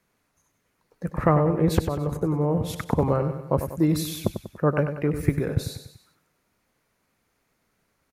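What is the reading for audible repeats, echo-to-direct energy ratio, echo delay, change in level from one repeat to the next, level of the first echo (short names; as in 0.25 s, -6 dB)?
4, -8.0 dB, 96 ms, -6.0 dB, -9.0 dB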